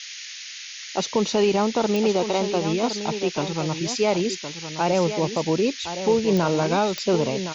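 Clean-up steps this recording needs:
click removal
noise reduction from a noise print 30 dB
echo removal 1,065 ms −9.5 dB

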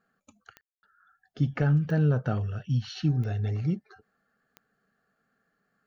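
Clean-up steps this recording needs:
click removal
ambience match 0:00.61–0:00.83

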